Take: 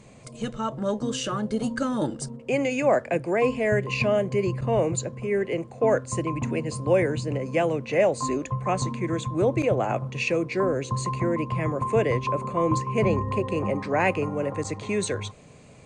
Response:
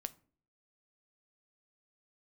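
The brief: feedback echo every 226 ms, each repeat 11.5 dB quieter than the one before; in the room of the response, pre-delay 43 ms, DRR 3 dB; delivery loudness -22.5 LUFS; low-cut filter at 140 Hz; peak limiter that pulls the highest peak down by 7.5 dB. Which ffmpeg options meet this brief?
-filter_complex "[0:a]highpass=140,alimiter=limit=0.126:level=0:latency=1,aecho=1:1:226|452|678:0.266|0.0718|0.0194,asplit=2[s0][s1];[1:a]atrim=start_sample=2205,adelay=43[s2];[s1][s2]afir=irnorm=-1:irlink=0,volume=0.944[s3];[s0][s3]amix=inputs=2:normalize=0,volume=1.58"

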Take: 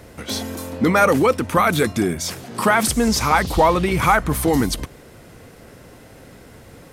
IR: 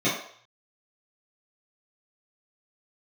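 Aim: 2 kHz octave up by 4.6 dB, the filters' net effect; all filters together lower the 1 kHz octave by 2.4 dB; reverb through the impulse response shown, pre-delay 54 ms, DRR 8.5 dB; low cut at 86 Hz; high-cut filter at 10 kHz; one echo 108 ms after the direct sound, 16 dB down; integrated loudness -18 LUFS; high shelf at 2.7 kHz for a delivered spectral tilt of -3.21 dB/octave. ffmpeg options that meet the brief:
-filter_complex "[0:a]highpass=86,lowpass=10000,equalizer=f=1000:t=o:g=-6.5,equalizer=f=2000:t=o:g=5,highshelf=f=2700:g=9,aecho=1:1:108:0.158,asplit=2[s0][s1];[1:a]atrim=start_sample=2205,adelay=54[s2];[s1][s2]afir=irnorm=-1:irlink=0,volume=0.0708[s3];[s0][s3]amix=inputs=2:normalize=0,volume=0.794"

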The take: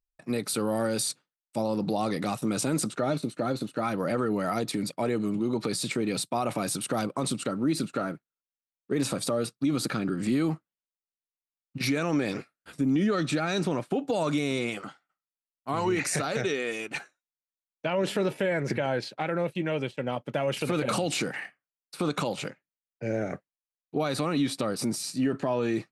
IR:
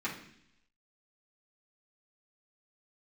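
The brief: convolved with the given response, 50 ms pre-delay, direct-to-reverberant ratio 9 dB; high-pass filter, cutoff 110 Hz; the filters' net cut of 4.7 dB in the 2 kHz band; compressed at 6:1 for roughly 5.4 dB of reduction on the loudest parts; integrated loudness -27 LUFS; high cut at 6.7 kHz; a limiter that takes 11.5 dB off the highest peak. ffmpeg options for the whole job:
-filter_complex "[0:a]highpass=110,lowpass=6700,equalizer=f=2000:t=o:g=-6,acompressor=threshold=0.0398:ratio=6,alimiter=level_in=1.78:limit=0.0631:level=0:latency=1,volume=0.562,asplit=2[s0][s1];[1:a]atrim=start_sample=2205,adelay=50[s2];[s1][s2]afir=irnorm=-1:irlink=0,volume=0.2[s3];[s0][s3]amix=inputs=2:normalize=0,volume=3.55"

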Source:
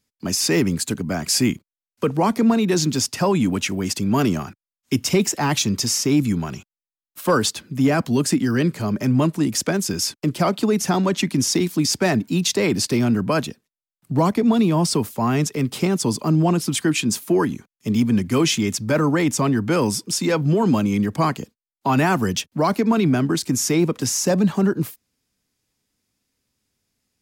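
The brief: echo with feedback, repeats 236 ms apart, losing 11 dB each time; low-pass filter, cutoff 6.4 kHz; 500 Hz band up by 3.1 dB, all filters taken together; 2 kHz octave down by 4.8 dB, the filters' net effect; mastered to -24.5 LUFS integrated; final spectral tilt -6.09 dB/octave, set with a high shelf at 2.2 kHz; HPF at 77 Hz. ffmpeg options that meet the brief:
-af "highpass=77,lowpass=6400,equalizer=f=500:t=o:g=4.5,equalizer=f=2000:t=o:g=-5,highshelf=f=2200:g=-3,aecho=1:1:236|472|708:0.282|0.0789|0.0221,volume=0.562"

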